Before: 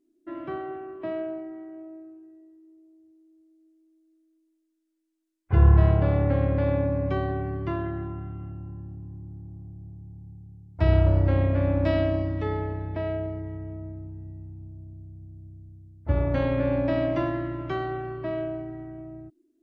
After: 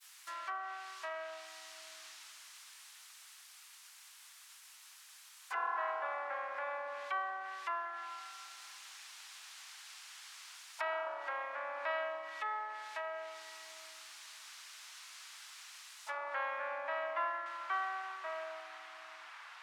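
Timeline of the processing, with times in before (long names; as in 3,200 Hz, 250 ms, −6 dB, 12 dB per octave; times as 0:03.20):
0:17.46: noise floor change −51 dB −41 dB
whole clip: downward expander −44 dBFS; inverse Chebyshev high-pass filter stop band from 170 Hz, stop band 80 dB; treble cut that deepens with the level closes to 1,500 Hz, closed at −39 dBFS; level +4 dB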